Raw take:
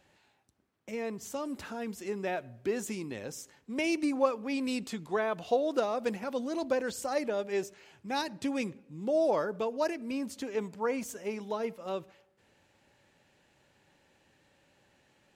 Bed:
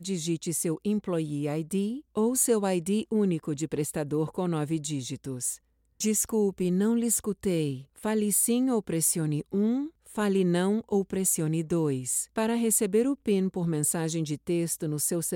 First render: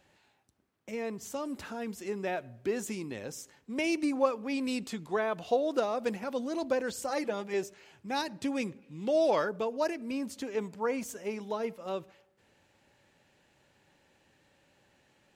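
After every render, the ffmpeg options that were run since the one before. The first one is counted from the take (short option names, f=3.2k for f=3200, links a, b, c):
-filter_complex "[0:a]asettb=1/sr,asplit=3[a][b][c];[a]atrim=end=7.094[d];[b]atrim=start=7.09:end=7.54,asetpts=PTS-STARTPTS,afade=t=in:d=0.004:c=qsin,afade=t=out:st=0.446:d=0.004:c=qsin,aecho=1:1:5.9:0.65,atrim=end_sample=19845[e];[c]atrim=start=7.536[f];[d][e]acrossfade=d=0.004:c1=hsin:c2=qsin[g];[g][f]acrossfade=d=0.004:c1=qsin:c2=hsin,asettb=1/sr,asplit=3[h][i][j];[h]atrim=end=8.824[k];[i]atrim=start=8.82:end=9.49,asetpts=PTS-STARTPTS,afade=t=in:d=0.004:c=qsin,afade=t=out:st=0.666:d=0.004:c=qsin,equalizer=f=3k:t=o:w=1.9:g=10[l];[j]atrim=start=9.486[m];[k][l]acrossfade=d=0.004:c1=hsin:c2=qsin[n];[n][m]acrossfade=d=0.004:c1=qsin:c2=hsin"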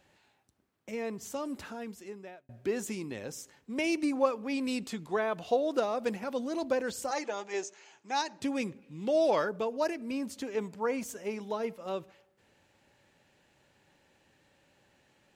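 -filter_complex "[0:a]asettb=1/sr,asplit=3[a][b][c];[a]atrim=end=7.114[d];[b]atrim=start=7.11:end=8.4,asetpts=PTS-STARTPTS,afade=t=in:d=0.004:c=qsin,afade=t=out:st=1.286:d=0.004:c=qsin,highpass=380,equalizer=f=530:t=q:w=4:g=-4,equalizer=f=870:t=q:w=4:g=4,equalizer=f=6.5k:t=q:w=4:g=10,lowpass=f=7.9k:w=0.5412,lowpass=f=7.9k:w=1.3066[e];[c]atrim=start=8.396[f];[d][e]acrossfade=d=0.004:c1=hsin:c2=qsin[g];[g][f]acrossfade=d=0.004:c1=qsin:c2=hsin,asplit=2[h][i];[h]atrim=end=2.49,asetpts=PTS-STARTPTS,afade=t=out:st=1.52:d=0.97[j];[i]atrim=start=2.49,asetpts=PTS-STARTPTS,afade=t=in:d=0.004:c=hsin[k];[j][k]concat=n=2:v=0:a=1"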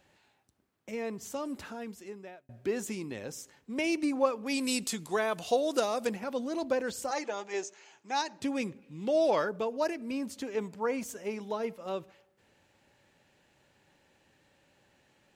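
-filter_complex "[0:a]asettb=1/sr,asplit=3[a][b][c];[a]atrim=end=4.464[d];[b]atrim=start=4.46:end=6.07,asetpts=PTS-STARTPTS,afade=t=in:d=0.004:c=qsin,afade=t=out:st=1.606:d=0.004:c=qsin,equalizer=f=10k:t=o:w=2.1:g=14.5[e];[c]atrim=start=6.066[f];[d][e]acrossfade=d=0.004:c1=hsin:c2=qsin[g];[g][f]acrossfade=d=0.004:c1=qsin:c2=hsin"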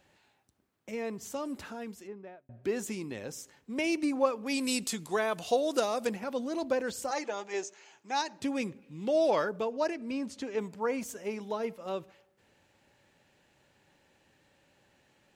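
-filter_complex "[0:a]asplit=3[a][b][c];[a]afade=t=out:st=2.06:d=0.02[d];[b]adynamicsmooth=sensitivity=3:basefreq=2.1k,afade=t=in:st=2.06:d=0.02,afade=t=out:st=2.63:d=0.02[e];[c]afade=t=in:st=2.63:d=0.02[f];[d][e][f]amix=inputs=3:normalize=0,asettb=1/sr,asplit=3[g][h][i];[g]atrim=end=9.664[j];[h]atrim=start=9.66:end=10.58,asetpts=PTS-STARTPTS,afade=t=in:d=0.004:c=qsin,afade=t=out:st=0.916:d=0.004:c=qsin,lowpass=7.7k[k];[i]atrim=start=10.576[l];[j][k]acrossfade=d=0.004:c1=hsin:c2=qsin[m];[m][l]acrossfade=d=0.004:c1=qsin:c2=hsin"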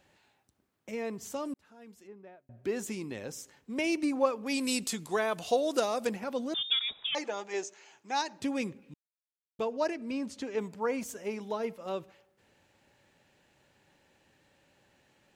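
-filter_complex "[0:a]asettb=1/sr,asplit=3[a][b][c];[a]atrim=end=6.544[d];[b]atrim=start=6.54:end=7.15,asetpts=PTS-STARTPTS,afade=t=in:d=0.004:c=qsin,afade=t=out:st=0.606:d=0.004:c=qsin,lowpass=f=3.3k:t=q:w=0.5098,lowpass=f=3.3k:t=q:w=0.6013,lowpass=f=3.3k:t=q:w=0.9,lowpass=f=3.3k:t=q:w=2.563,afreqshift=-3900[e];[c]atrim=start=7.146[f];[d][e]acrossfade=d=0.004:c1=hsin:c2=qsin[g];[g][f]acrossfade=d=0.004:c1=qsin:c2=hsin,asplit=4[h][i][j][k];[h]atrim=end=1.54,asetpts=PTS-STARTPTS,afade=t=out:st=1.536:d=0.004:c=hsin[l];[i]atrim=start=1.54:end=8.94,asetpts=PTS-STARTPTS,afade=t=in:d=1.69:c=qsin,afade=t=out:st=7.396:d=0.004:c=hsin[m];[j]atrim=start=8.94:end=9.59,asetpts=PTS-STARTPTS,volume=0[n];[k]atrim=start=9.59,asetpts=PTS-STARTPTS,afade=t=in:d=0.004:c=hsin[o];[l][m][n][o]concat=n=4:v=0:a=1"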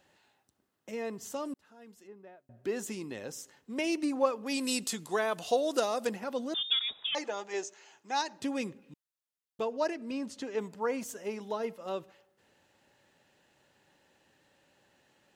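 -af "lowshelf=f=130:g=-8,bandreject=f=2.3k:w=12"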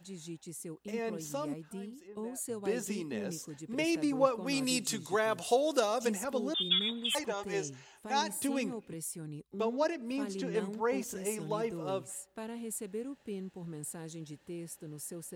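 -filter_complex "[1:a]volume=-15dB[a];[0:a][a]amix=inputs=2:normalize=0"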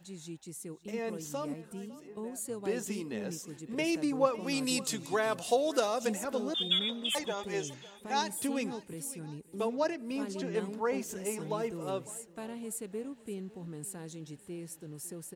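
-af "aecho=1:1:554|1108|1662:0.112|0.0438|0.0171"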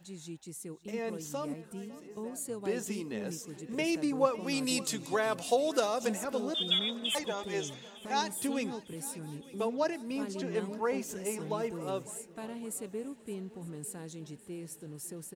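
-af "aecho=1:1:903|1806|2709:0.0891|0.0392|0.0173"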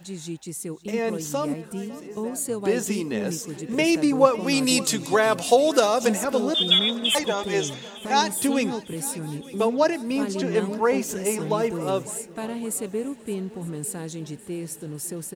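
-af "volume=10.5dB,alimiter=limit=-3dB:level=0:latency=1"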